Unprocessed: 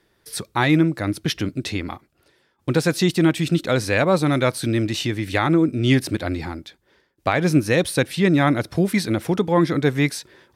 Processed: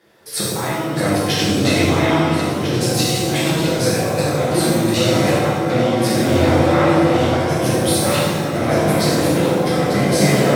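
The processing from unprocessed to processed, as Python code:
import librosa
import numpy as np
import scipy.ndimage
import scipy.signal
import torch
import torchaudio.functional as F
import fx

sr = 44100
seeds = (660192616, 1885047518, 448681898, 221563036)

y = fx.reverse_delay_fb(x, sr, ms=676, feedback_pct=73, wet_db=-9.5)
y = scipy.signal.sosfilt(scipy.signal.butter(2, 100.0, 'highpass', fs=sr, output='sos'), y)
y = fx.peak_eq(y, sr, hz=650.0, db=7.0, octaves=1.1)
y = fx.over_compress(y, sr, threshold_db=-24.0, ratio=-1.0)
y = fx.echo_wet_lowpass(y, sr, ms=89, feedback_pct=72, hz=930.0, wet_db=-4.0)
y = fx.rev_shimmer(y, sr, seeds[0], rt60_s=1.1, semitones=7, shimmer_db=-8, drr_db=-7.5)
y = y * librosa.db_to_amplitude(-3.5)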